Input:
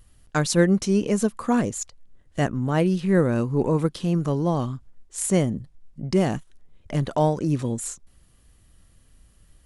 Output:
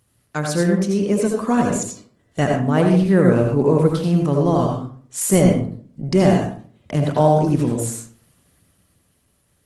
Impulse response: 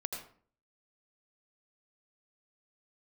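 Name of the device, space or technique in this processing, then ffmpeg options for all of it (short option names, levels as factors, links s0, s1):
far-field microphone of a smart speaker: -filter_complex "[1:a]atrim=start_sample=2205[s0];[0:a][s0]afir=irnorm=-1:irlink=0,highpass=f=87:w=0.5412,highpass=f=87:w=1.3066,dynaudnorm=f=110:g=21:m=2.51" -ar 48000 -c:a libopus -b:a 20k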